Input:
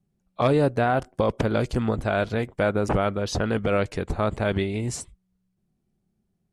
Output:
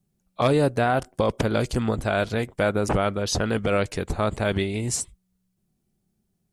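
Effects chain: treble shelf 4.5 kHz +10 dB

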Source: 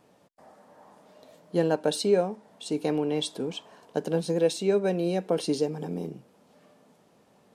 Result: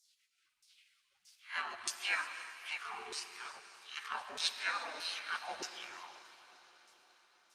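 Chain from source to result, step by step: reverse spectral sustain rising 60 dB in 0.31 s; 2.77–3.45 s: Chebyshev band-stop 370–800 Hz, order 4; spectral gate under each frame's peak -30 dB weak; 4.59–5.06 s: steep high-pass 160 Hz 36 dB/octave; LFO band-pass saw down 1.6 Hz 390–6100 Hz; echo that smears into a reverb 536 ms, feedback 54%, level -16 dB; gated-style reverb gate 390 ms flat, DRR 8.5 dB; trim +15.5 dB; Opus 48 kbps 48 kHz

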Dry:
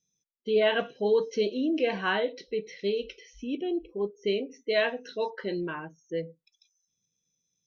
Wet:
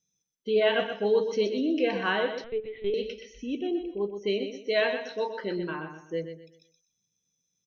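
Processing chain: feedback delay 124 ms, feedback 32%, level -8 dB; 2.44–2.94 s: LPC vocoder at 8 kHz pitch kept

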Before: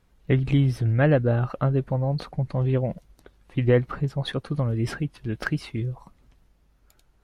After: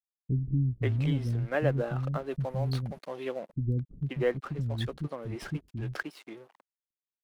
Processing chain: 1.73–2.79 s: treble shelf 2.1 kHz +9 dB; crossover distortion -43.5 dBFS; bands offset in time lows, highs 530 ms, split 280 Hz; trim -5.5 dB

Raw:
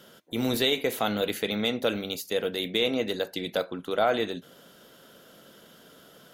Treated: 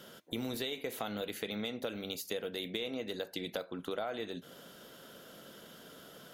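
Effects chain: compression 6:1, threshold -35 dBFS, peak gain reduction 15 dB

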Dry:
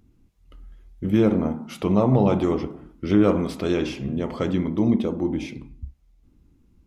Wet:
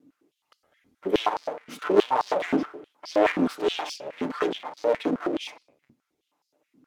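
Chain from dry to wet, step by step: comb filter that takes the minimum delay 6.7 ms; Chebyshev shaper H 7 -29 dB, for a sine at -7.5 dBFS; step-sequenced high-pass 9.5 Hz 250–4800 Hz

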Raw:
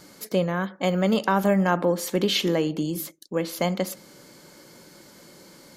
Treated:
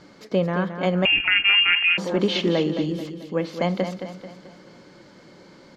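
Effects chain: distance through air 170 m; feedback delay 219 ms, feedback 46%, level -9 dB; 1.05–1.98 s: frequency inversion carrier 3 kHz; trim +2 dB

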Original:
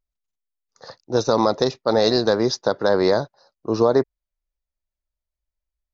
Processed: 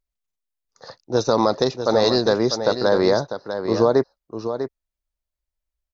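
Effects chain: delay 647 ms -9 dB

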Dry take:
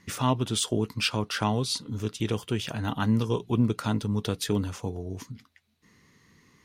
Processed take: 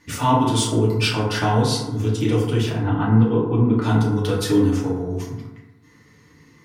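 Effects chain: 2.69–3.82 s: distance through air 450 m; FDN reverb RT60 1.1 s, low-frequency decay 1×, high-frequency decay 0.35×, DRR -6.5 dB

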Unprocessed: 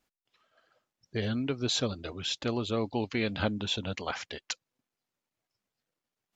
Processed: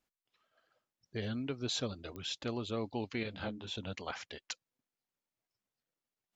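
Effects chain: clicks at 2.16 s, -25 dBFS; 3.23–3.76 s: detune thickener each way 32 cents; trim -6.5 dB

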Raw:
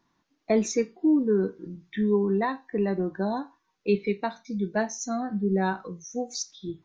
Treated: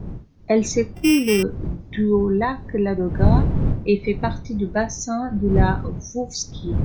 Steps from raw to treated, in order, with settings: 0.95–1.43 s: sorted samples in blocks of 16 samples; wind noise 140 Hz -29 dBFS; trim +5 dB

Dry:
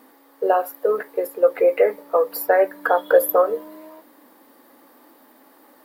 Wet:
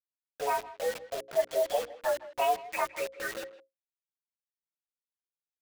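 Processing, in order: frequency axis rescaled in octaves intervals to 121%; time-frequency box 2.97–3.57 s, 540–1100 Hz -27 dB; speed mistake 24 fps film run at 25 fps; bit crusher 5-bit; hum notches 60/120/180/240/300/360/420/480/540 Hz; speakerphone echo 160 ms, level -16 dB; expander -43 dBFS; trim -9 dB

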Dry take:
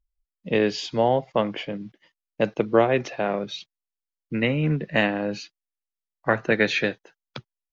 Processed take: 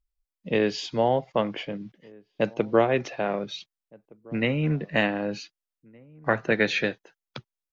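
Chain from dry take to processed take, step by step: echo from a far wall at 260 m, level -25 dB; trim -2 dB

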